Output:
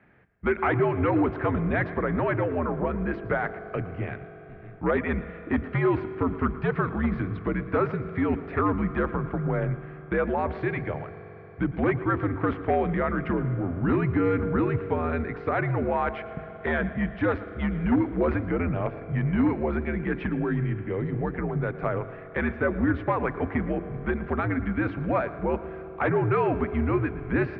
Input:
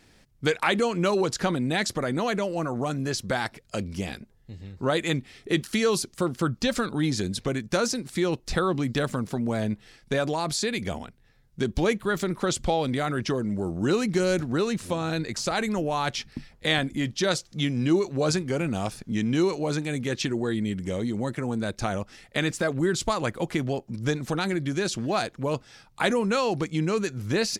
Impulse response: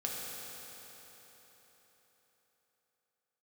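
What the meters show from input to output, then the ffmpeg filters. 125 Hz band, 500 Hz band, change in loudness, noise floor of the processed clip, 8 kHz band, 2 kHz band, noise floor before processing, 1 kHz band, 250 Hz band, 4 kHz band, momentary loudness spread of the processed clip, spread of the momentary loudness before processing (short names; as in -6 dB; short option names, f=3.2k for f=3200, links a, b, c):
+2.0 dB, -0.5 dB, 0.0 dB, -43 dBFS, under -40 dB, -0.5 dB, -59 dBFS, +1.0 dB, +0.5 dB, under -20 dB, 7 LU, 7 LU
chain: -filter_complex "[0:a]bandreject=f=60:t=h:w=6,bandreject=f=120:t=h:w=6,bandreject=f=180:t=h:w=6,bandreject=f=240:t=h:w=6,bandreject=f=300:t=h:w=6,bandreject=f=360:t=h:w=6,bandreject=f=420:t=h:w=6,crystalizer=i=1.5:c=0,aeval=exprs='0.15*(abs(mod(val(0)/0.15+3,4)-2)-1)':c=same,asplit=2[a][b];[1:a]atrim=start_sample=2205,adelay=113[c];[b][c]afir=irnorm=-1:irlink=0,volume=-15dB[d];[a][d]amix=inputs=2:normalize=0,highpass=f=150:t=q:w=0.5412,highpass=f=150:t=q:w=1.307,lowpass=f=2.2k:t=q:w=0.5176,lowpass=f=2.2k:t=q:w=0.7071,lowpass=f=2.2k:t=q:w=1.932,afreqshift=-81,volume=1.5dB"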